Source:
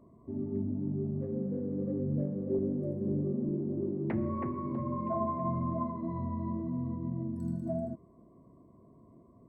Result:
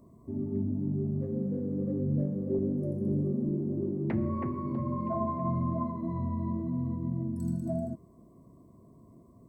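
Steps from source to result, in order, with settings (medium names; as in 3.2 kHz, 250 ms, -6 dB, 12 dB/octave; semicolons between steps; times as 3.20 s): tone controls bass +4 dB, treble +12 dB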